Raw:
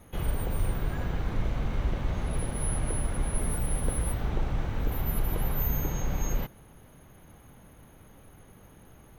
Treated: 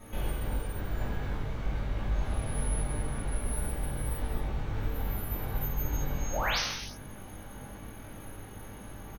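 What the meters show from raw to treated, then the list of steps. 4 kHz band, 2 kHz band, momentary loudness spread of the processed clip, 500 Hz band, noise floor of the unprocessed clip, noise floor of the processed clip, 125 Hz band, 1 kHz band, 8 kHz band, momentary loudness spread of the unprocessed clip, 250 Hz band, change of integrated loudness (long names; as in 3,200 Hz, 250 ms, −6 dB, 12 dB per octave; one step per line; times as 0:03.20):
+8.0 dB, +3.5 dB, 13 LU, −1.5 dB, −54 dBFS, −45 dBFS, −3.0 dB, +1.0 dB, −3.0 dB, 3 LU, −3.0 dB, −2.5 dB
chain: downward compressor 6 to 1, threshold −37 dBFS, peak gain reduction 15 dB
sound drawn into the spectrogram rise, 0:06.32–0:06.59, 460–6,700 Hz −38 dBFS
double-tracking delay 20 ms −5 dB
reverb whose tail is shaped and stops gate 390 ms falling, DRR −7 dB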